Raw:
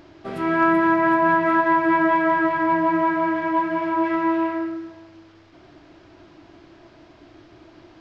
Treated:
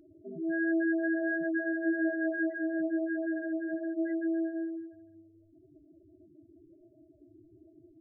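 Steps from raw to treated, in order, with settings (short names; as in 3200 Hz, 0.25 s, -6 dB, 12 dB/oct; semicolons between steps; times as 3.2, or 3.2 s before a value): loudest bins only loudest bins 8; brick-wall FIR band-stop 660–1400 Hz; gain -8 dB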